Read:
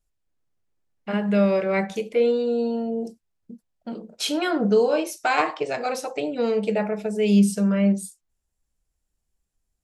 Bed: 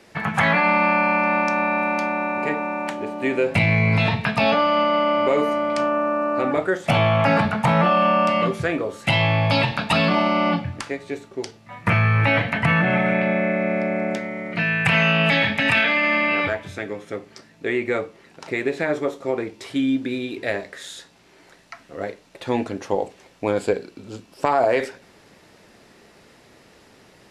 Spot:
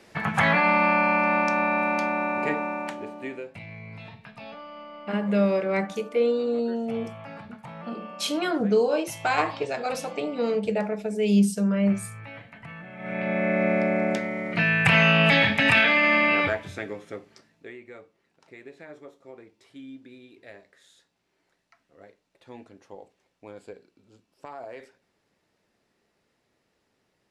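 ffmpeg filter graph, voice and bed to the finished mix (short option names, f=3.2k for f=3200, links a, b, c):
-filter_complex "[0:a]adelay=4000,volume=-2.5dB[a];[1:a]volume=20.5dB,afade=t=out:st=2.55:d=0.98:silence=0.0891251,afade=t=in:st=12.97:d=0.67:silence=0.0707946,afade=t=out:st=16.28:d=1.49:silence=0.0891251[b];[a][b]amix=inputs=2:normalize=0"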